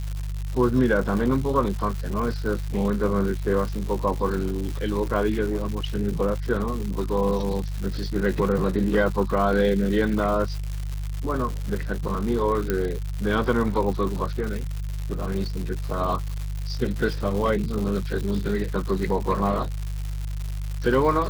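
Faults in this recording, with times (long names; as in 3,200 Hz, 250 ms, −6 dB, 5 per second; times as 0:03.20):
surface crackle 250 per second −29 dBFS
mains hum 50 Hz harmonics 3 −29 dBFS
0:12.70: click −10 dBFS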